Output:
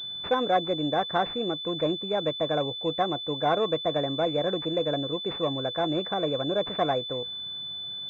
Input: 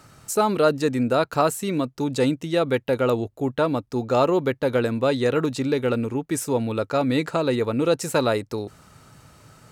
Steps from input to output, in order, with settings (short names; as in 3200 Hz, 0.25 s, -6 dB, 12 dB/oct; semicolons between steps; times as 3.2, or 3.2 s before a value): varispeed +20%; small resonant body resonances 490/710/1100 Hz, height 8 dB, ringing for 90 ms; pulse-width modulation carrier 3500 Hz; gain -6.5 dB